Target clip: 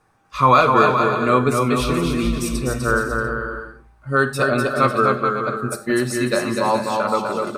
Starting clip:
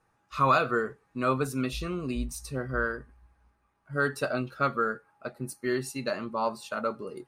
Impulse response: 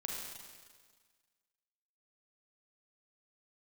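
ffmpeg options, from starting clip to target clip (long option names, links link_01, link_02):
-filter_complex "[0:a]aecho=1:1:240|408|525.6|607.9|665.5:0.631|0.398|0.251|0.158|0.1,asplit=2[link_01][link_02];[1:a]atrim=start_sample=2205,atrim=end_sample=4410[link_03];[link_02][link_03]afir=irnorm=-1:irlink=0,volume=-7dB[link_04];[link_01][link_04]amix=inputs=2:normalize=0,asetrate=42336,aresample=44100,volume=7dB"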